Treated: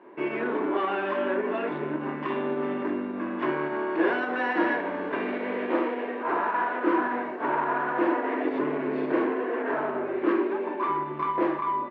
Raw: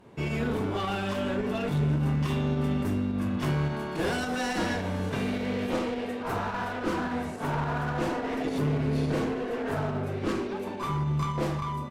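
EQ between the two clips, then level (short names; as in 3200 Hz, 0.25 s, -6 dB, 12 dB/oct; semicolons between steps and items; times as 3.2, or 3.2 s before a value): speaker cabinet 240–2300 Hz, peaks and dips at 360 Hz +7 dB, 600 Hz +6 dB, 1000 Hz +9 dB, 1700 Hz +5 dB; tilt +3.5 dB/oct; bell 310 Hz +12 dB 0.78 oct; -1.0 dB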